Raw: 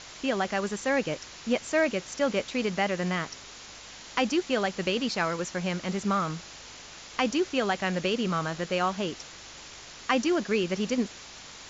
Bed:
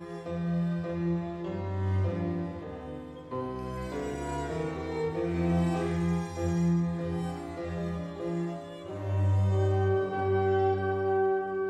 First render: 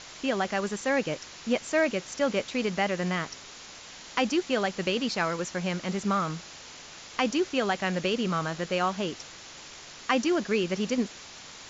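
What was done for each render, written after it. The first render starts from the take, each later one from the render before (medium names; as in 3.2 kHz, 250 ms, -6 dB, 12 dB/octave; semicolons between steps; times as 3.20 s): de-hum 50 Hz, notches 2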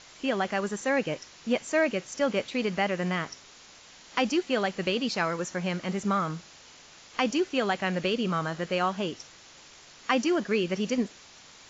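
noise print and reduce 6 dB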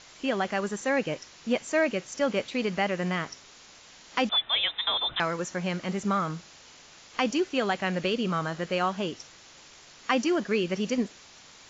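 4.29–5.20 s: frequency inversion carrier 3.8 kHz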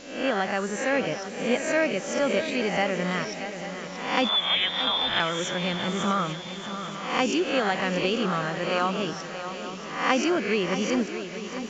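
reverse spectral sustain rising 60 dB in 0.64 s; on a send: shuffle delay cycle 841 ms, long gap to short 3:1, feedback 48%, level -10.5 dB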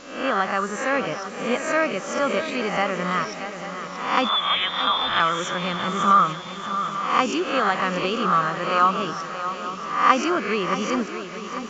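peaking EQ 1.2 kHz +13.5 dB 0.48 oct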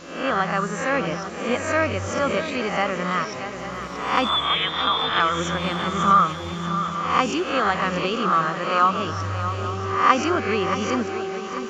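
add bed -3.5 dB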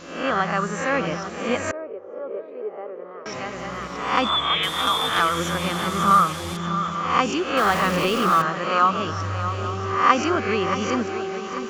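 1.71–3.26 s: ladder band-pass 470 Hz, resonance 70%; 4.63–6.57 s: one-bit delta coder 64 kbps, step -27.5 dBFS; 7.57–8.42 s: jump at every zero crossing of -25.5 dBFS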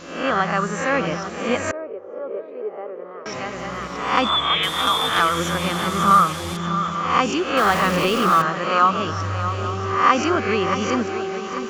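trim +2 dB; peak limiter -3 dBFS, peak gain reduction 2.5 dB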